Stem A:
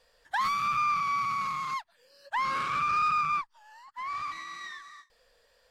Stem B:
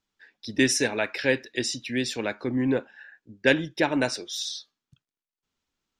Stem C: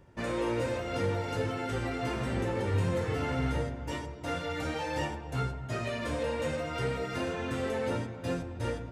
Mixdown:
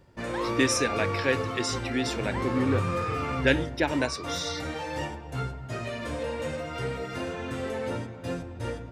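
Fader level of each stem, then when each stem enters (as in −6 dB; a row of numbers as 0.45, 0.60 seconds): −8.0, −2.5, 0.0 decibels; 0.00, 0.00, 0.00 seconds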